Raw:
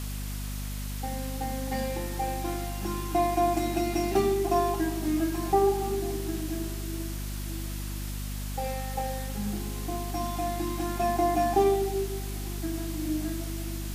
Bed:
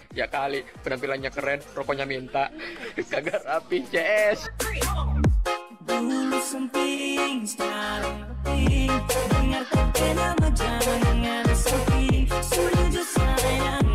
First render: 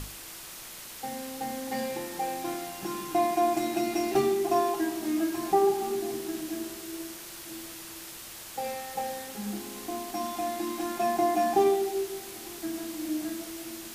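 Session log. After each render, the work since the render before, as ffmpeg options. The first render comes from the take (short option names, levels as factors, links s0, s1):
-af "bandreject=f=50:t=h:w=6,bandreject=f=100:t=h:w=6,bandreject=f=150:t=h:w=6,bandreject=f=200:t=h:w=6,bandreject=f=250:t=h:w=6,bandreject=f=300:t=h:w=6"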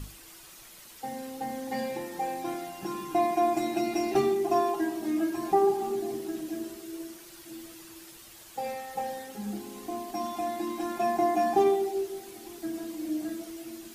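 -af "afftdn=nr=9:nf=-44"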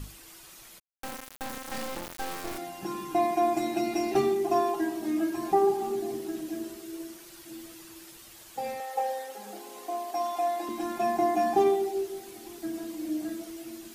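-filter_complex "[0:a]asplit=3[s0][s1][s2];[s0]afade=t=out:st=0.78:d=0.02[s3];[s1]acrusher=bits=3:dc=4:mix=0:aa=0.000001,afade=t=in:st=0.78:d=0.02,afade=t=out:st=2.57:d=0.02[s4];[s2]afade=t=in:st=2.57:d=0.02[s5];[s3][s4][s5]amix=inputs=3:normalize=0,asettb=1/sr,asplit=3[s6][s7][s8];[s6]atrim=end=8.804[s9];[s7]atrim=start=8.8:end=10.69,asetpts=PTS-STARTPTS,afade=t=in:d=0.004:c=qsin,afade=t=out:st=1.886:d=0.004:c=qsin,highpass=f=560:t=q:w=1.8[s10];[s8]atrim=start=10.686[s11];[s9][s10]acrossfade=d=0.004:c1=hsin:c2=qsin[s12];[s12][s11]acrossfade=d=0.004:c1=qsin:c2=hsin"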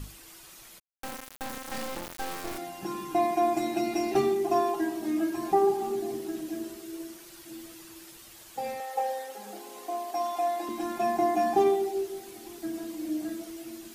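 -af anull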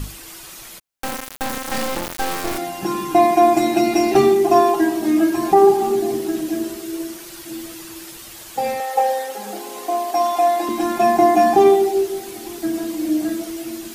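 -af "volume=3.98,alimiter=limit=0.708:level=0:latency=1"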